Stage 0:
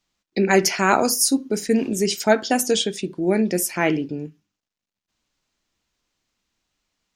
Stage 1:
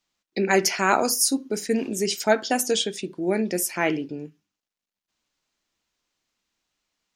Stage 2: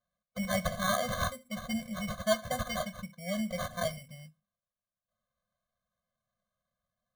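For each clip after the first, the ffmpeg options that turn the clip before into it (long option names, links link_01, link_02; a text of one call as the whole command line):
ffmpeg -i in.wav -af "lowshelf=frequency=190:gain=-8,volume=-2dB" out.wav
ffmpeg -i in.wav -af "acrusher=samples=17:mix=1:aa=0.000001,afftfilt=real='re*eq(mod(floor(b*sr/1024/250),2),0)':imag='im*eq(mod(floor(b*sr/1024/250),2),0)':win_size=1024:overlap=0.75,volume=-6dB" out.wav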